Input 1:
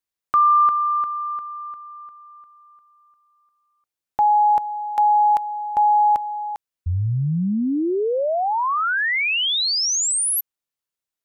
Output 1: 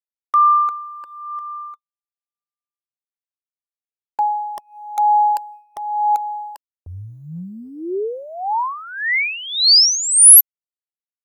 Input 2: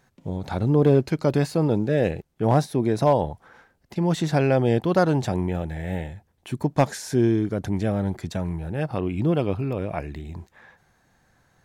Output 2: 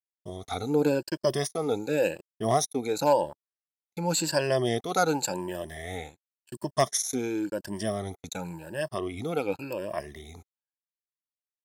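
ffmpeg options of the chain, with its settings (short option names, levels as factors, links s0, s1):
-af "afftfilt=real='re*pow(10,17/40*sin(2*PI*(1.3*log(max(b,1)*sr/1024/100)/log(2)-(0.92)*(pts-256)/sr)))':imag='im*pow(10,17/40*sin(2*PI*(1.3*log(max(b,1)*sr/1024/100)/log(2)-(0.92)*(pts-256)/sr)))':win_size=1024:overlap=0.75,agate=range=0.002:threshold=0.0158:ratio=16:release=29:detection=peak,bass=f=250:g=-12,treble=f=4000:g=14,volume=0.531"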